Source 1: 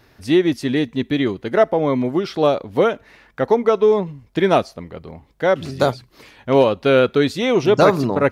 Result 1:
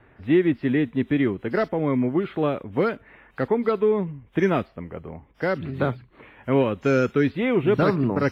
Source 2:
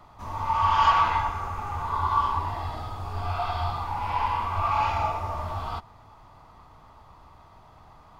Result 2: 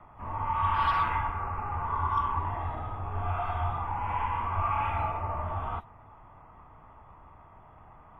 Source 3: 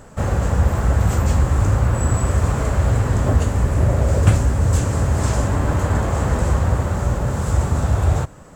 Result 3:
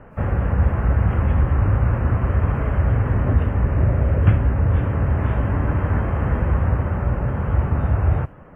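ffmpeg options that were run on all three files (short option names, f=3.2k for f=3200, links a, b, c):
-filter_complex "[0:a]lowpass=f=2.4k:w=0.5412,lowpass=f=2.4k:w=1.3066,acrossover=split=400|1200[a][b][c];[b]acompressor=threshold=-32dB:ratio=6[d];[c]asoftclip=type=hard:threshold=-23.5dB[e];[a][d][e]amix=inputs=3:normalize=0,volume=-1dB" -ar 32000 -c:a wmav2 -b:a 32k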